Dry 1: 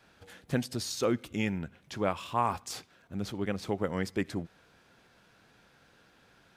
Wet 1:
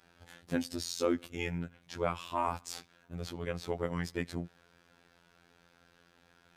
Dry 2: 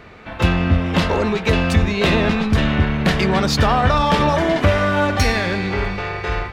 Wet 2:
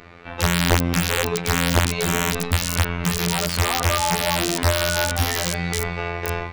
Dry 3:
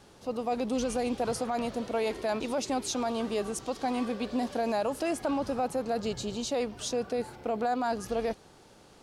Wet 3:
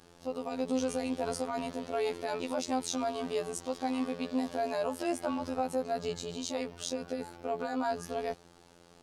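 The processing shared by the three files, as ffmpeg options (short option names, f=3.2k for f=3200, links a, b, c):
-af "acontrast=55,afftfilt=real='hypot(re,im)*cos(PI*b)':imag='0':win_size=2048:overlap=0.75,aeval=exprs='(mod(1.33*val(0)+1,2)-1)/1.33':c=same,volume=-5.5dB"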